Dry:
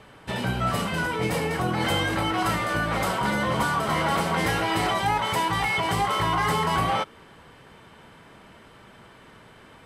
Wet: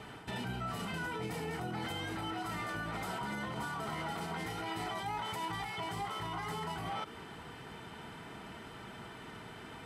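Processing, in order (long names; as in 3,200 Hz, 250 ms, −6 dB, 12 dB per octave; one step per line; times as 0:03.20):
reversed playback
downward compressor, threshold −33 dBFS, peak gain reduction 12.5 dB
reversed playback
brickwall limiter −32 dBFS, peak gain reduction 8.5 dB
notch comb filter 550 Hz
level +2.5 dB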